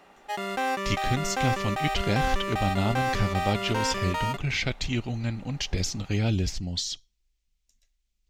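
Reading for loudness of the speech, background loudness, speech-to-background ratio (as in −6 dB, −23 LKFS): −29.0 LKFS, −29.5 LKFS, 0.5 dB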